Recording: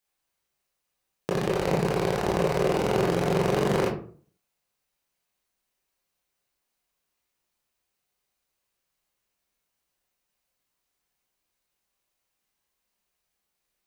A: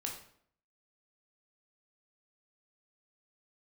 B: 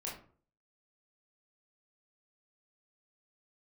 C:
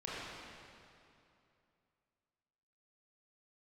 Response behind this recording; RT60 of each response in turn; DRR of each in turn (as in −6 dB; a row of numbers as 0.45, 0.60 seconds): B; 0.60, 0.45, 2.7 seconds; 0.0, −5.0, −8.0 decibels